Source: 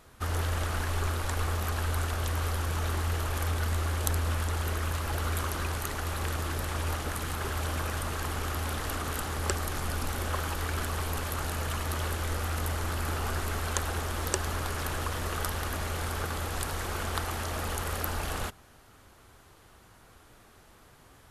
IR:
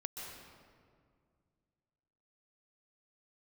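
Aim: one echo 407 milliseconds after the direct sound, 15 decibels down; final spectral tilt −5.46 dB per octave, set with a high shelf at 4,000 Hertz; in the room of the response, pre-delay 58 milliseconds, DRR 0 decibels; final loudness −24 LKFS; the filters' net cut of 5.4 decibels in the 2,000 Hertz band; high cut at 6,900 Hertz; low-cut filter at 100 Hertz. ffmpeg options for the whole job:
-filter_complex "[0:a]highpass=100,lowpass=6900,equalizer=frequency=2000:width_type=o:gain=-6,highshelf=frequency=4000:gain=-6.5,aecho=1:1:407:0.178,asplit=2[link_01][link_02];[1:a]atrim=start_sample=2205,adelay=58[link_03];[link_02][link_03]afir=irnorm=-1:irlink=0,volume=1dB[link_04];[link_01][link_04]amix=inputs=2:normalize=0,volume=8.5dB"

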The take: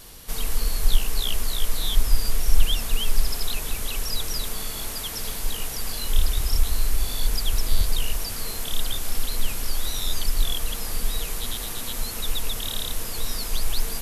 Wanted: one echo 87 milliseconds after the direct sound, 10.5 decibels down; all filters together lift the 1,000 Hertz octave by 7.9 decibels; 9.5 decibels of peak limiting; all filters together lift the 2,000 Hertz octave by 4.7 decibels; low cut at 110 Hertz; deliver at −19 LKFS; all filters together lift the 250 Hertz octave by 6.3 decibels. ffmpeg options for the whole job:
ffmpeg -i in.wav -af "highpass=110,equalizer=frequency=250:width_type=o:gain=7.5,equalizer=frequency=1000:width_type=o:gain=8.5,equalizer=frequency=2000:width_type=o:gain=3.5,alimiter=limit=-23dB:level=0:latency=1,aecho=1:1:87:0.299,volume=11.5dB" out.wav

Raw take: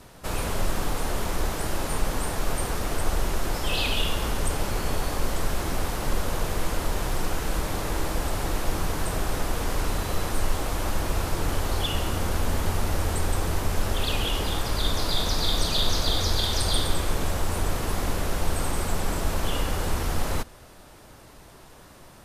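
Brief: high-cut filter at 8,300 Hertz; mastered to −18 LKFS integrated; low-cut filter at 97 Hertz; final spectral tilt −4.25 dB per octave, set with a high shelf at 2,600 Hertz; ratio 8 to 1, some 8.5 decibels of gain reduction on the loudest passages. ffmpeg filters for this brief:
ffmpeg -i in.wav -af "highpass=97,lowpass=8300,highshelf=frequency=2600:gain=-3.5,acompressor=threshold=-34dB:ratio=8,volume=19.5dB" out.wav

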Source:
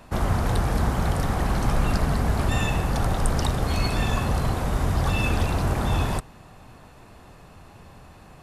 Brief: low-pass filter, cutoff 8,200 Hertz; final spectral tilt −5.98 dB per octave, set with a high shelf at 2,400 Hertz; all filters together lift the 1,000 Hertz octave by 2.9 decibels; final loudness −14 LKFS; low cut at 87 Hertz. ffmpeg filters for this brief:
ffmpeg -i in.wav -af "highpass=87,lowpass=8200,equalizer=frequency=1000:width_type=o:gain=5,highshelf=frequency=2400:gain=-7,volume=12dB" out.wav

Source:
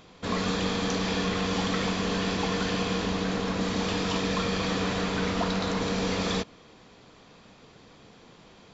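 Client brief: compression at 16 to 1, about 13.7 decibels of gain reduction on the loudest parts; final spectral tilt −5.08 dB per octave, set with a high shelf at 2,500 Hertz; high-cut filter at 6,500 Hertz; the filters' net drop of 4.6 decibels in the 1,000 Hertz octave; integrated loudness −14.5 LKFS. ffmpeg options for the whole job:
ffmpeg -i in.wav -af "lowpass=6500,equalizer=frequency=1000:width_type=o:gain=-4.5,highshelf=frequency=2500:gain=-8,acompressor=threshold=-39dB:ratio=16,volume=28.5dB" out.wav

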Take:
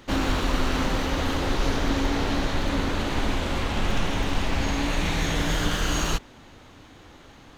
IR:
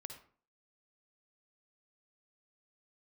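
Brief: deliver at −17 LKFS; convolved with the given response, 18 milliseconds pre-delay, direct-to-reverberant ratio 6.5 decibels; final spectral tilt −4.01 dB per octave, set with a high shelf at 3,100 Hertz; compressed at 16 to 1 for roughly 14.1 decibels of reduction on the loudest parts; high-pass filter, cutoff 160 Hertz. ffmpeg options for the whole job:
-filter_complex "[0:a]highpass=160,highshelf=frequency=3100:gain=8,acompressor=threshold=-36dB:ratio=16,asplit=2[link_01][link_02];[1:a]atrim=start_sample=2205,adelay=18[link_03];[link_02][link_03]afir=irnorm=-1:irlink=0,volume=-2dB[link_04];[link_01][link_04]amix=inputs=2:normalize=0,volume=21dB"

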